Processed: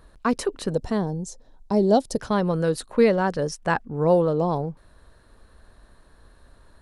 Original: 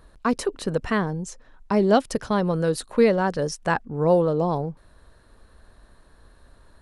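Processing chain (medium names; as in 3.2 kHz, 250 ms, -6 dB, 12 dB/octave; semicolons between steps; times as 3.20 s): 0.70–2.19 s: high-order bell 1.8 kHz -12.5 dB; 2.73–3.72 s: tape noise reduction on one side only decoder only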